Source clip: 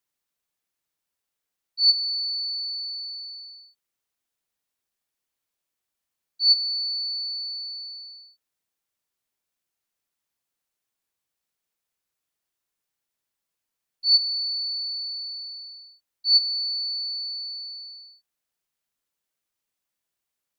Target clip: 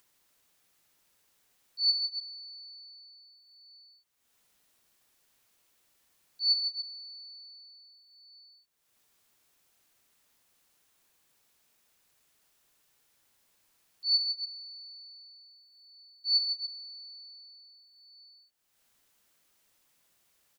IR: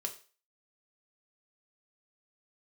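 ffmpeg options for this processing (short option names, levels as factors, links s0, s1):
-af "aecho=1:1:65|155|289:0.211|0.531|0.531,acompressor=mode=upward:threshold=0.00631:ratio=2.5,volume=0.376"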